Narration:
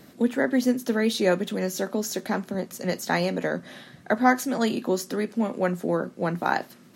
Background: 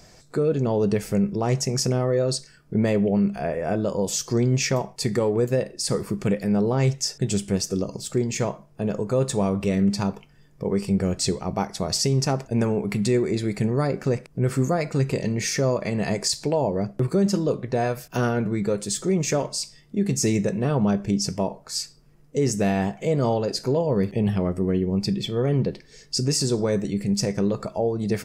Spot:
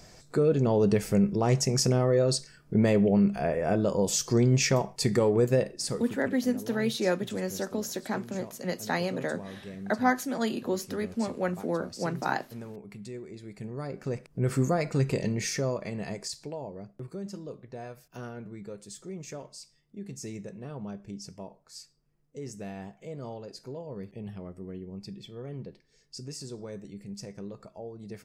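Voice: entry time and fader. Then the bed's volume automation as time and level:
5.80 s, −5.0 dB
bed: 0:05.67 −1.5 dB
0:06.35 −19.5 dB
0:13.39 −19.5 dB
0:14.53 −3.5 dB
0:15.22 −3.5 dB
0:16.82 −17.5 dB

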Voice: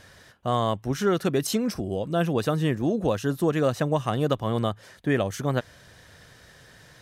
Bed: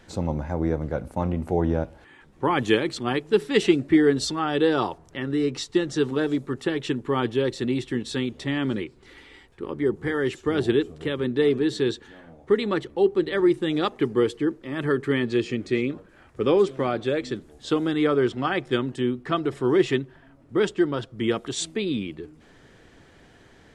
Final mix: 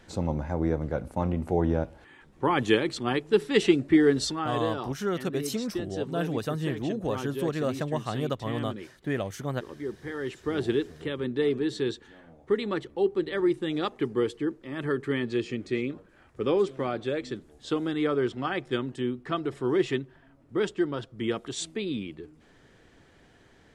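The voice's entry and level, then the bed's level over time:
4.00 s, −6.0 dB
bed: 0:04.26 −2 dB
0:04.72 −11 dB
0:10.01 −11 dB
0:10.55 −5 dB

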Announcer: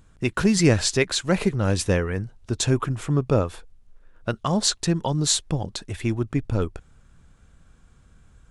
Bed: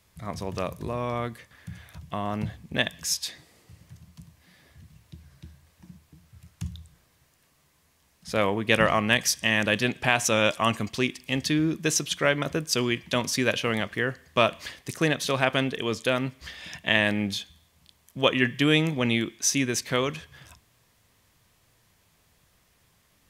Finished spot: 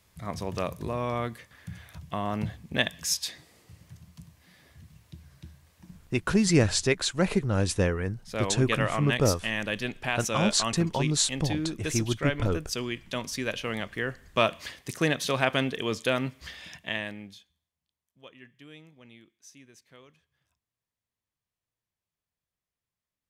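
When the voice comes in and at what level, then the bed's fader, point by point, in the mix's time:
5.90 s, −3.5 dB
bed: 0:06.05 −0.5 dB
0:06.61 −7 dB
0:13.45 −7 dB
0:14.54 −1.5 dB
0:16.55 −1.5 dB
0:17.79 −28 dB

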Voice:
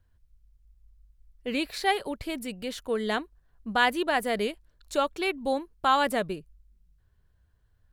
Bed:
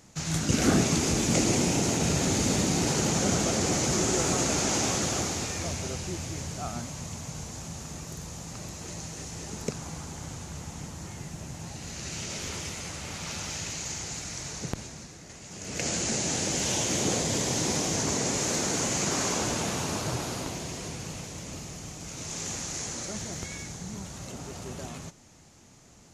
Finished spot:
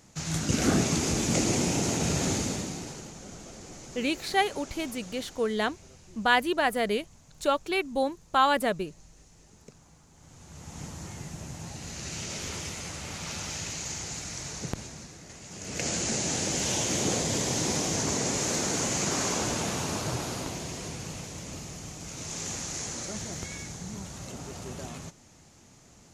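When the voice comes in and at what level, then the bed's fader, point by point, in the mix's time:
2.50 s, +0.5 dB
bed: 0:02.31 −1.5 dB
0:03.15 −19 dB
0:10.10 −19 dB
0:10.82 −0.5 dB

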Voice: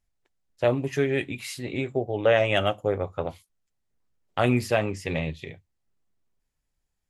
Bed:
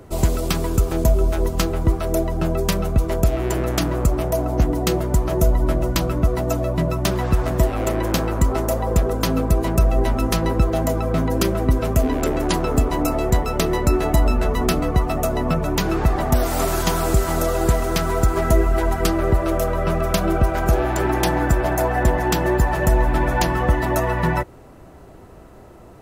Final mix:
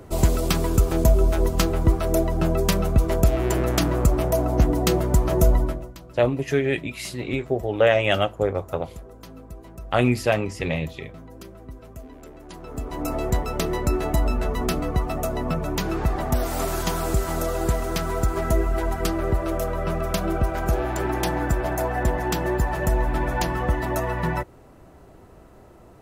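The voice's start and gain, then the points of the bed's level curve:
5.55 s, +2.5 dB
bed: 0:05.58 −0.5 dB
0:05.97 −22.5 dB
0:12.45 −22.5 dB
0:13.14 −5 dB

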